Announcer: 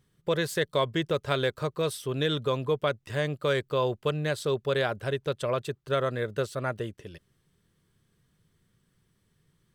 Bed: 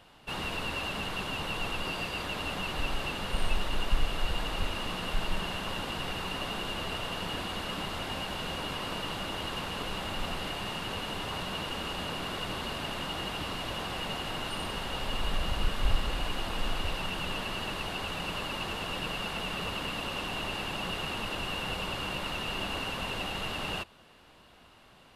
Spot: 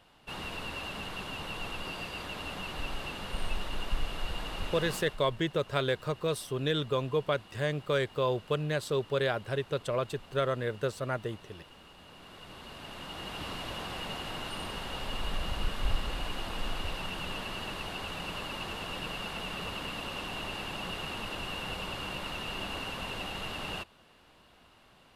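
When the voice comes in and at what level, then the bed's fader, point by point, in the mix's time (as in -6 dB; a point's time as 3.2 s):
4.45 s, -2.5 dB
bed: 4.96 s -4.5 dB
5.22 s -18.5 dB
11.97 s -18.5 dB
13.47 s -3 dB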